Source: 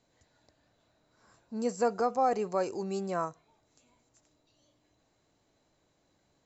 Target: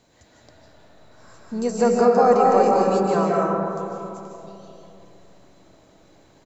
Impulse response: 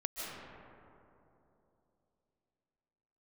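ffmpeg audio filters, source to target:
-filter_complex "[0:a]asplit=2[a][b];[b]acompressor=threshold=-43dB:ratio=6,volume=1.5dB[c];[a][c]amix=inputs=2:normalize=0,asplit=2[d][e];[e]asetrate=37084,aresample=44100,atempo=1.18921,volume=-16dB[f];[d][f]amix=inputs=2:normalize=0[g];[1:a]atrim=start_sample=2205[h];[g][h]afir=irnorm=-1:irlink=0,volume=7.5dB"

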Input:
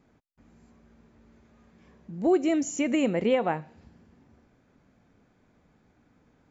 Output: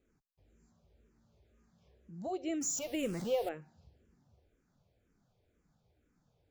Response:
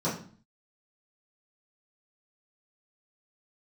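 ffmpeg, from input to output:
-filter_complex "[0:a]asettb=1/sr,asplit=3[a][b][c];[a]atrim=end=2.614[d];[b]atrim=start=2.61:end=3.49,asetpts=PTS-STARTPTS,afade=t=in:d=0.004:c=qsin,afade=t=out:st=0.876:d=0.004:c=qsin,aeval=exprs='val(0)+0.5*0.0282*sgn(val(0))':c=same[e];[c]atrim=start=3.486[f];[d][e]acrossfade=d=0.004:c1=hsin:c2=qsin[g];[g][f]acrossfade=d=0.004:c1=qsin:c2=hsin,equalizer=f=250:t=o:w=1:g=-10,equalizer=f=1k:t=o:w=1:g=-8,equalizer=f=2k:t=o:w=1:g=-8,asplit=2[h][i];[i]afreqshift=-2[j];[h][j]amix=inputs=2:normalize=1,volume=-3dB"

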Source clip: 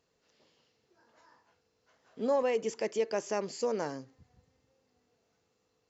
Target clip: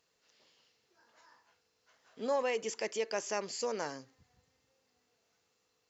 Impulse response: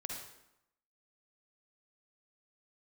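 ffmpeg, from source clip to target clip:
-af "tiltshelf=f=790:g=-5.5,volume=-2dB"

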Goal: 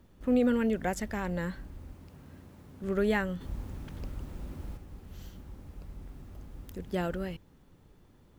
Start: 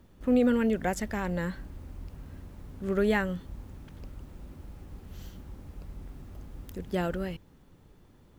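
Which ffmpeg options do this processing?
-filter_complex "[0:a]asettb=1/sr,asplit=3[a][b][c];[a]atrim=end=1.934[d];[b]atrim=start=1.93:end=2.84,asetpts=PTS-STARTPTS,afade=t=in:d=0.004:c=qsin,afade=t=out:st=0.906:d=0.004:c=qsin,highpass=100[e];[c]atrim=start=2.836[f];[d][e]acrossfade=d=0.004:c1=hsin:c2=qsin[g];[g][f]acrossfade=d=0.004:c1=qsin:c2=hsin,asplit=3[h][i][j];[h]afade=t=out:st=3.4:d=0.02[k];[i]acontrast=65,afade=t=in:st=3.4:d=0.02,afade=t=out:st=4.76:d=0.02[l];[j]afade=t=in:st=4.76:d=0.02[m];[k][l][m]amix=inputs=3:normalize=0,volume=-2dB"

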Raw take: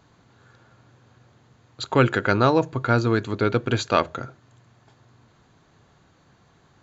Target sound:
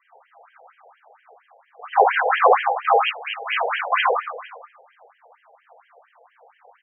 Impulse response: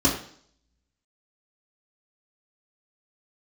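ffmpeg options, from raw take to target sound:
-filter_complex "[0:a]afreqshift=-140,asplit=2[a][b];[b]adynamicsmooth=sensitivity=2:basefreq=1k,volume=-3dB[c];[a][c]amix=inputs=2:normalize=0,aeval=exprs='(tanh(7.08*val(0)+0.7)-tanh(0.7))/7.08':c=same,asettb=1/sr,asplit=3[d][e][f];[d]atrim=end=2.944[g];[e]atrim=start=2.94:end=3.53,asetpts=PTS-STARTPTS,afade=t=in:d=0.004:c=qsin,afade=t=out:st=0.586:d=0.004:c=qsin,lowpass=f=3.2k:t=q:w=0.5098,lowpass=f=3.2k:t=q:w=0.6013,lowpass=f=3.2k:t=q:w=0.9,lowpass=f=3.2k:t=q:w=2.563,afreqshift=-3800[h];[f]atrim=start=3.526[i];[g][h]acrossfade=d=0.004:c1=hsin:c2=qsin[j];[j][i]acrossfade=d=0.004:c1=qsin:c2=hsin,acrossover=split=220|1800[k][l][m];[k]acrusher=bits=2:mode=log:mix=0:aa=0.000001[n];[n][l][m]amix=inputs=3:normalize=0,asettb=1/sr,asplit=3[o][p][q];[o]atrim=end=1.964[r];[p]atrim=start=1.96:end=2.36,asetpts=PTS-STARTPTS,afade=t=in:d=0.004:c=qsin,afade=t=out:st=0.396:d=0.004:c=qsin,asuperstop=centerf=1200:order=4:qfactor=5.2[s];[q]atrim=start=2.356[t];[r][s]acrossfade=d=0.004:c1=hsin:c2=qsin[u];[u][t]acrossfade=d=0.004:c1=qsin:c2=hsin,aecho=1:1:62|454:0.316|0.112[v];[1:a]atrim=start_sample=2205,afade=t=out:st=0.15:d=0.01,atrim=end_sample=7056,asetrate=31311,aresample=44100[w];[v][w]afir=irnorm=-1:irlink=0,afftfilt=real='re*between(b*sr/1024,600*pow(2300/600,0.5+0.5*sin(2*PI*4.3*pts/sr))/1.41,600*pow(2300/600,0.5+0.5*sin(2*PI*4.3*pts/sr))*1.41)':imag='im*between(b*sr/1024,600*pow(2300/600,0.5+0.5*sin(2*PI*4.3*pts/sr))/1.41,600*pow(2300/600,0.5+0.5*sin(2*PI*4.3*pts/sr))*1.41)':win_size=1024:overlap=0.75,volume=-1dB"

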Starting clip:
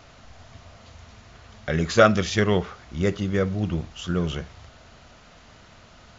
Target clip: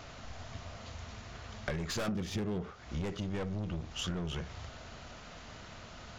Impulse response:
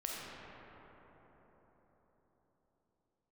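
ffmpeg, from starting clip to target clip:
-filter_complex "[0:a]aeval=exprs='(tanh(17.8*val(0)+0.4)-tanh(0.4))/17.8':c=same,asettb=1/sr,asplit=3[a][b][c];[a]atrim=end=2.084[d];[b]atrim=start=2.08:end=2.71,asetpts=PTS-STARTPTS,afade=t=in:d=0.004:c=qsin,afade=t=out:st=0.626:d=0.004:c=qsin,equalizer=f=210:w=0.31:g=12[e];[c]atrim=start=2.706[f];[d][e]acrossfade=d=0.004:c1=hsin:c2=qsin[g];[g][f]acrossfade=d=0.004:c1=qsin:c2=hsin,acompressor=threshold=-35dB:ratio=12,volume=2.5dB"

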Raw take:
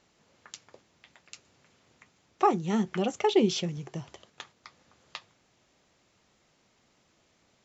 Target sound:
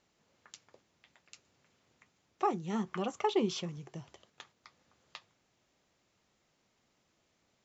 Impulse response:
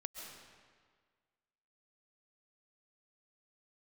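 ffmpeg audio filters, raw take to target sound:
-filter_complex "[0:a]asettb=1/sr,asplit=3[a][b][c];[a]atrim=end=2.754[d];[b]atrim=start=2.75:end=3.76,asetpts=PTS-STARTPTS,afade=t=in:d=0.004:c=qsin,afade=t=out:st=1.006:d=0.004:c=qsin,equalizer=f=1.1k:w=2.9:g=12.5[e];[c]atrim=start=3.756[f];[d][e]acrossfade=d=0.004:c1=hsin:c2=qsin[g];[g][f]acrossfade=d=0.004:c1=qsin:c2=hsin,volume=-7.5dB"

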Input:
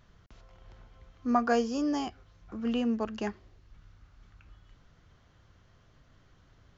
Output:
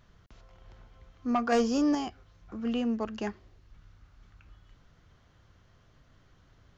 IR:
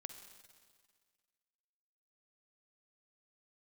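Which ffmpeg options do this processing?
-filter_complex "[0:a]asettb=1/sr,asplit=3[a][b][c];[a]atrim=end=1.524[d];[b]atrim=start=1.52:end=1.95,asetpts=PTS-STARTPTS,afade=t=in:d=0.004:c=qsin,afade=t=out:st=0.426:d=0.004:c=qsin,acontrast=38[e];[c]atrim=start=1.946[f];[d][e]acrossfade=d=0.004:c1=hsin:c2=qsin[g];[g][f]acrossfade=d=0.004:c1=qsin:c2=hsin,asoftclip=type=tanh:threshold=-18.5dB"

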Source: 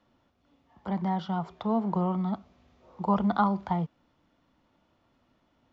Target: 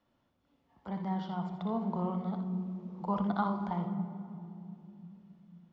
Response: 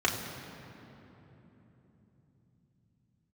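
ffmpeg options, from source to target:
-filter_complex "[0:a]asplit=2[a][b];[1:a]atrim=start_sample=2205,asetrate=61740,aresample=44100,adelay=59[c];[b][c]afir=irnorm=-1:irlink=0,volume=-13.5dB[d];[a][d]amix=inputs=2:normalize=0,volume=-7.5dB"

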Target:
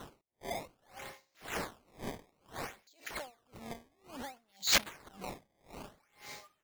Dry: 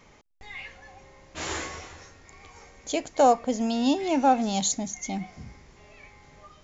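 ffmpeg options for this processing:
-filter_complex "[0:a]asettb=1/sr,asplit=3[a][b][c];[a]atrim=end=4.674[d];[b]atrim=start=4.67:end=5.12,asetpts=PTS-STARTPTS,afade=t=in:d=0.004:c=qsin,afade=t=out:st=0.446:d=0.004:c=qsin,aeval=exprs='val(0)+0.5*0.0266*sgn(val(0))':c=same[e];[c]atrim=start=5.116[f];[d][e]acrossfade=d=0.004:c1=hsin:c2=qsin[g];[g][f]acrossfade=d=0.004:c1=qsin:c2=hsin,acontrast=85,asplit=2[h][i];[i]adelay=270,highpass=300,lowpass=3.4k,asoftclip=type=hard:threshold=-34.5dB,volume=-18dB[j];[h][j]amix=inputs=2:normalize=0,alimiter=level_in=7.5dB:limit=-24dB:level=0:latency=1:release=28,volume=-7.5dB,highpass=f=580:p=1,acompressor=mode=upward:threshold=-53dB:ratio=2.5,aemphasis=mode=production:type=75fm,acrusher=samples=18:mix=1:aa=0.000001:lfo=1:lforange=28.8:lforate=0.59,aeval=exprs='val(0)*pow(10,-33*(0.5-0.5*cos(2*PI*1.9*n/s))/20)':c=same,volume=1dB"

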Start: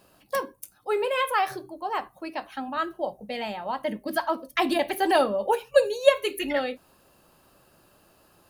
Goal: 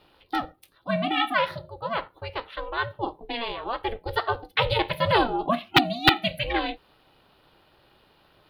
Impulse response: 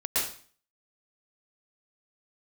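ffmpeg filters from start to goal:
-af "aeval=exprs='val(0)*sin(2*PI*230*n/s)':c=same,aeval=exprs='(mod(3.16*val(0)+1,2)-1)/3.16':c=same,highshelf=f=5.1k:t=q:w=3:g=-11.5,volume=2.5dB"

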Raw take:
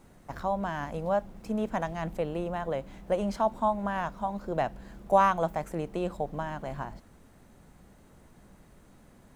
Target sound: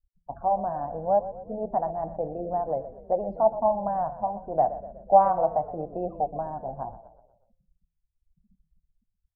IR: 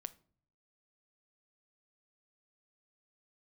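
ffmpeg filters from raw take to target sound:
-filter_complex "[0:a]flanger=delay=5:depth=3.4:regen=-65:speed=0.82:shape=triangular,afftfilt=real='re*gte(hypot(re,im),0.0112)':imag='im*gte(hypot(re,im),0.0112)':win_size=1024:overlap=0.75,lowpass=f=740:t=q:w=4.9,bandreject=f=168.7:t=h:w=4,bandreject=f=337.4:t=h:w=4,bandreject=f=506.1:t=h:w=4,bandreject=f=674.8:t=h:w=4,bandreject=f=843.5:t=h:w=4,bandreject=f=1.0122k:t=h:w=4,bandreject=f=1.1809k:t=h:w=4,bandreject=f=1.3496k:t=h:w=4,bandreject=f=1.5183k:t=h:w=4,bandreject=f=1.687k:t=h:w=4,bandreject=f=1.8557k:t=h:w=4,bandreject=f=2.0244k:t=h:w=4,bandreject=f=2.1931k:t=h:w=4,bandreject=f=2.3618k:t=h:w=4,bandreject=f=2.5305k:t=h:w=4,bandreject=f=2.6992k:t=h:w=4,bandreject=f=2.8679k:t=h:w=4,bandreject=f=3.0366k:t=h:w=4,bandreject=f=3.2053k:t=h:w=4,bandreject=f=3.374k:t=h:w=4,asplit=2[a][b];[b]asplit=5[c][d][e][f][g];[c]adelay=122,afreqshift=-30,volume=-14dB[h];[d]adelay=244,afreqshift=-60,volume=-19.8dB[i];[e]adelay=366,afreqshift=-90,volume=-25.7dB[j];[f]adelay=488,afreqshift=-120,volume=-31.5dB[k];[g]adelay=610,afreqshift=-150,volume=-37.4dB[l];[h][i][j][k][l]amix=inputs=5:normalize=0[m];[a][m]amix=inputs=2:normalize=0"

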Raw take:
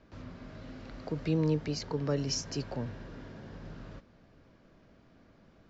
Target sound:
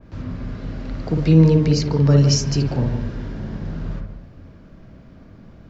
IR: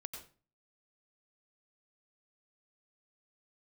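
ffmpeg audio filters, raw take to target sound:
-filter_complex "[0:a]bass=f=250:g=9,treble=f=4k:g=0,asplit=2[a][b];[1:a]atrim=start_sample=2205,lowpass=2k,adelay=56[c];[b][c]afir=irnorm=-1:irlink=0,volume=2dB[d];[a][d]amix=inputs=2:normalize=0,adynamicequalizer=threshold=0.00282:dfrequency=2400:dqfactor=0.7:tfrequency=2400:tqfactor=0.7:attack=5:release=100:ratio=0.375:range=2:mode=boostabove:tftype=highshelf,volume=8dB"

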